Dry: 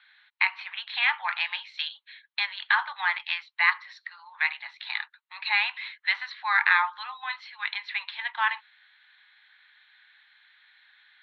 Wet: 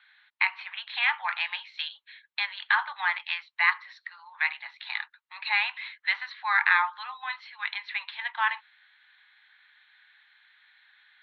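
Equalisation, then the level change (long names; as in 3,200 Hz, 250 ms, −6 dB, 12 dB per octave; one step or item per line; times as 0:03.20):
high-frequency loss of the air 94 metres
0.0 dB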